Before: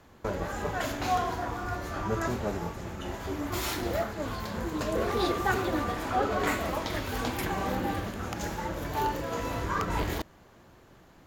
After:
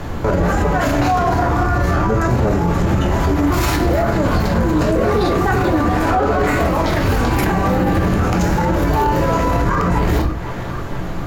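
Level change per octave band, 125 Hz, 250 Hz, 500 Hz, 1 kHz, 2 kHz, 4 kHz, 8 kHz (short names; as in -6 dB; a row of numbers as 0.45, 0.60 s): +19.0, +16.5, +14.0, +13.0, +12.0, +8.5, +9.0 dB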